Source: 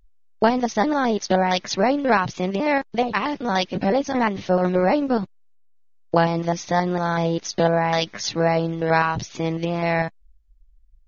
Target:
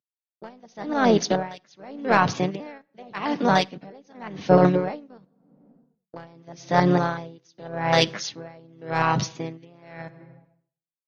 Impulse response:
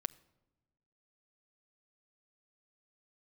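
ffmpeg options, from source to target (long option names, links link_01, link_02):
-filter_complex "[0:a]acontrast=24,highpass=frequency=120:width=0.5412,highpass=frequency=120:width=1.3066,aeval=exprs='1.06*(cos(1*acos(clip(val(0)/1.06,-1,1)))-cos(1*PI/2))+0.0841*(cos(3*acos(clip(val(0)/1.06,-1,1)))-cos(3*PI/2))':channel_layout=same,asplit=3[link_01][link_02][link_03];[link_02]asetrate=35002,aresample=44100,atempo=1.25992,volume=-9dB[link_04];[link_03]asetrate=37084,aresample=44100,atempo=1.18921,volume=-17dB[link_05];[link_01][link_04][link_05]amix=inputs=3:normalize=0,agate=range=-33dB:threshold=-29dB:ratio=3:detection=peak,asplit=2[link_06][link_07];[1:a]atrim=start_sample=2205[link_08];[link_07][link_08]afir=irnorm=-1:irlink=0,volume=13.5dB[link_09];[link_06][link_09]amix=inputs=2:normalize=0,aeval=exprs='val(0)*pow(10,-32*(0.5-0.5*cos(2*PI*0.87*n/s))/20)':channel_layout=same,volume=-12.5dB"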